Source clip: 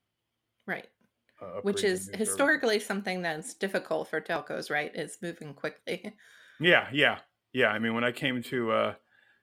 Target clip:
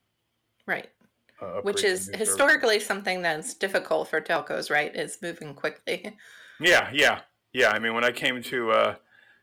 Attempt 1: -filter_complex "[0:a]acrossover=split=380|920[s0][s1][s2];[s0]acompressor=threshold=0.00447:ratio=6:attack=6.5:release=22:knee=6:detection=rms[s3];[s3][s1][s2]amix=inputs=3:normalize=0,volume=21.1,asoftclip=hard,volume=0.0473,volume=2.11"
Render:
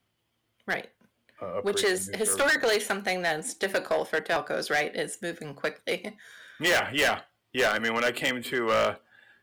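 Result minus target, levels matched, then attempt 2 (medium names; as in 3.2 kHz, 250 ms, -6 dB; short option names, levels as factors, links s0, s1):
overload inside the chain: distortion +6 dB
-filter_complex "[0:a]acrossover=split=380|920[s0][s1][s2];[s0]acompressor=threshold=0.00447:ratio=6:attack=6.5:release=22:knee=6:detection=rms[s3];[s3][s1][s2]amix=inputs=3:normalize=0,volume=9.44,asoftclip=hard,volume=0.106,volume=2.11"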